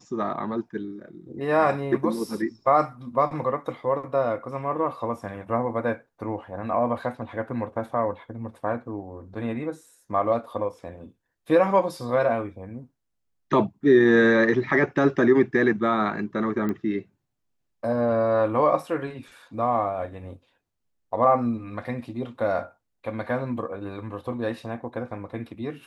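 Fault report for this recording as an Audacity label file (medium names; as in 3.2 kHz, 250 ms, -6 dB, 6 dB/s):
16.690000	16.690000	pop -18 dBFS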